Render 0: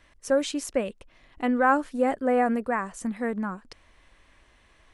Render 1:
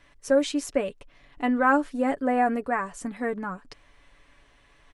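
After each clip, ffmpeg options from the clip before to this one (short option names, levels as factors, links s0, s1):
-af "highshelf=f=8700:g=-4.5,aecho=1:1:7:0.5"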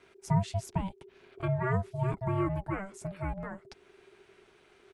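-filter_complex "[0:a]aeval=exprs='val(0)*sin(2*PI*390*n/s)':c=same,acrossover=split=410[s0][s1];[s1]acompressor=threshold=0.00251:ratio=1.5[s2];[s0][s2]amix=inputs=2:normalize=0"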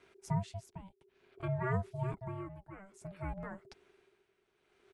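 -af "tremolo=f=0.57:d=0.79,volume=0.631"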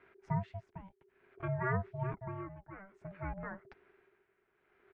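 -af "lowpass=f=1800:t=q:w=1.8,volume=0.891"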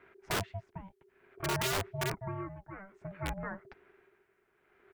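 -af "aeval=exprs='(mod(31.6*val(0)+1,2)-1)/31.6':c=same,volume=1.5"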